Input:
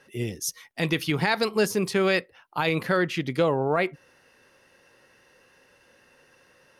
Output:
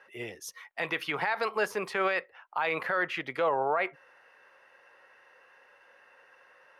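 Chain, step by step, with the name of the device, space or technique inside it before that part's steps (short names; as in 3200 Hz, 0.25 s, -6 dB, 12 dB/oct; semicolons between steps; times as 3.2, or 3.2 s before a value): DJ mixer with the lows and highs turned down (three-band isolator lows -23 dB, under 560 Hz, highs -18 dB, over 2400 Hz; limiter -23 dBFS, peak gain reduction 9 dB); gain +4.5 dB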